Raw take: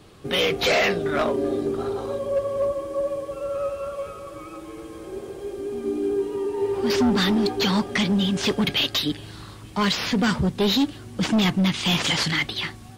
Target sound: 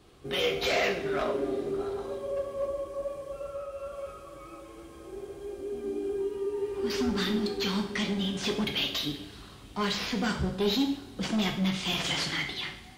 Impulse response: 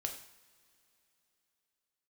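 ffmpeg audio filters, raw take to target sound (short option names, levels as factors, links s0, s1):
-filter_complex "[0:a]asettb=1/sr,asplit=3[s0][s1][s2];[s0]atrim=end=3.484[s3];[s1]atrim=start=3.48:end=3.92,asetpts=PTS-STARTPTS,afade=t=in:d=0.004:c=qsin,afade=t=out:st=0.436:d=0.004:c=qsin,acompressor=threshold=0.0447:ratio=6[s4];[s2]atrim=start=3.916[s5];[s3][s4]acrossfade=d=0.004:c1=hsin:c2=qsin[s6];[s6][s5]acrossfade=d=0.004:c1=qsin:c2=hsin,asettb=1/sr,asplit=3[s7][s8][s9];[s7]atrim=end=6.244[s10];[s8]atrim=start=6.24:end=7.99,asetpts=PTS-STARTPTS,afade=t=in:d=0.004:c=qsin,afade=t=out:st=1.746:d=0.004:c=qsin,equalizer=f=700:t=o:w=0.63:g=-7.5[s11];[s9]atrim=start=7.986[s12];[s10][s11]acrossfade=d=0.004:c1=hsin:c2=qsin[s13];[s13][s12]acrossfade=d=0.004:c1=qsin:c2=hsin[s14];[1:a]atrim=start_sample=2205[s15];[s14][s15]afir=irnorm=-1:irlink=0,volume=0.447"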